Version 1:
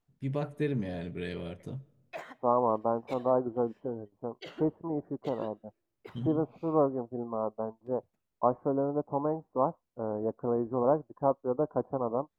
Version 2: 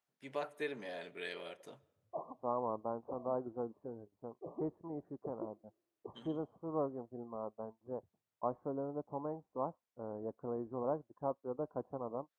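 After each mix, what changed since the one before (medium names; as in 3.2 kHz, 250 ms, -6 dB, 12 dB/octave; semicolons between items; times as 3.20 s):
first voice: add high-pass 640 Hz 12 dB/octave; second voice -10.5 dB; background: add brick-wall FIR low-pass 1.2 kHz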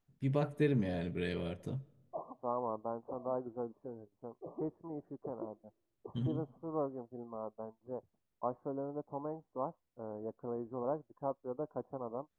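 first voice: remove high-pass 640 Hz 12 dB/octave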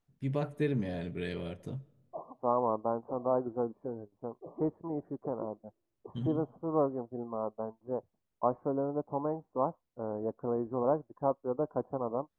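second voice +7.5 dB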